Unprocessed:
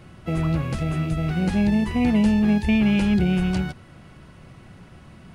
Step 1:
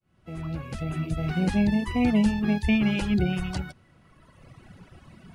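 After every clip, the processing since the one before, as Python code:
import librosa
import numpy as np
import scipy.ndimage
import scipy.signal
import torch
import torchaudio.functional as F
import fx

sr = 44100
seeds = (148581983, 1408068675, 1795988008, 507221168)

y = fx.fade_in_head(x, sr, length_s=1.35)
y = fx.dereverb_blind(y, sr, rt60_s=1.8)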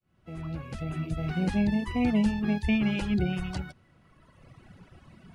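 y = fx.high_shelf(x, sr, hz=7400.0, db=-4.5)
y = y * 10.0 ** (-3.0 / 20.0)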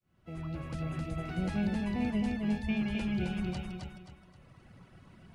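y = fx.rider(x, sr, range_db=5, speed_s=2.0)
y = fx.echo_feedback(y, sr, ms=264, feedback_pct=34, wet_db=-3.0)
y = y * 10.0 ** (-7.0 / 20.0)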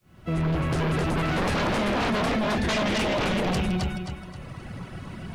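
y = fx.fold_sine(x, sr, drive_db=14, ceiling_db=-21.5)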